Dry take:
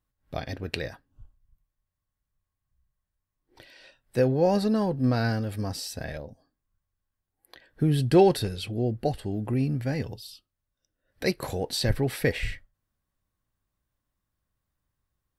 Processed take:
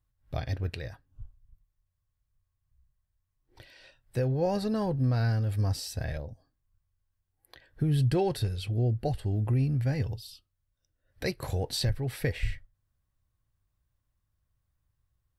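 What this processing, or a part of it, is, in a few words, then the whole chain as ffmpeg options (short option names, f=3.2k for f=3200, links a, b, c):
car stereo with a boomy subwoofer: -af "lowshelf=f=150:t=q:w=1.5:g=7.5,alimiter=limit=-16dB:level=0:latency=1:release=445,volume=-2.5dB"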